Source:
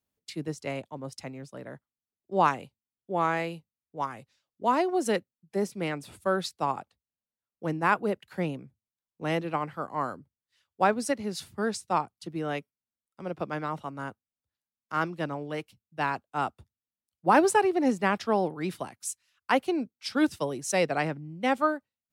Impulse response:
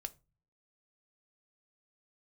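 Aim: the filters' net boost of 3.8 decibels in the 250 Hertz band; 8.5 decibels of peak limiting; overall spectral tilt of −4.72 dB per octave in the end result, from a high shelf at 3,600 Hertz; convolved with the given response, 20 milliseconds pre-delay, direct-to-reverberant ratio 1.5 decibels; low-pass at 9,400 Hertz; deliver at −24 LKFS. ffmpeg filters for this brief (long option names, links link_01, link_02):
-filter_complex "[0:a]lowpass=9400,equalizer=frequency=250:width_type=o:gain=5,highshelf=frequency=3600:gain=6,alimiter=limit=-15.5dB:level=0:latency=1,asplit=2[link_01][link_02];[1:a]atrim=start_sample=2205,adelay=20[link_03];[link_02][link_03]afir=irnorm=-1:irlink=0,volume=1.5dB[link_04];[link_01][link_04]amix=inputs=2:normalize=0,volume=3dB"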